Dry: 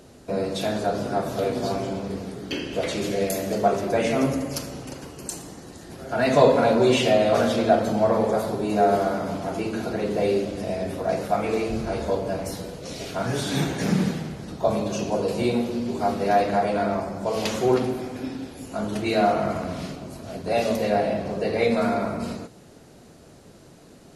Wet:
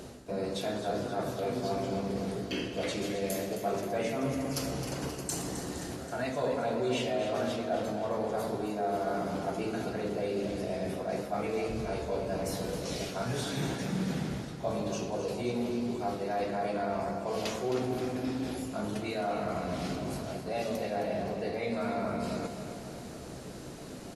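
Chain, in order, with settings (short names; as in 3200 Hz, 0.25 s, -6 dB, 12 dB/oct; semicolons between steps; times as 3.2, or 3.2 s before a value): reverse; compressor 4:1, threshold -38 dBFS, peak gain reduction 22.5 dB; reverse; doubler 16 ms -11 dB; feedback echo 0.264 s, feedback 59%, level -10 dB; gain +4.5 dB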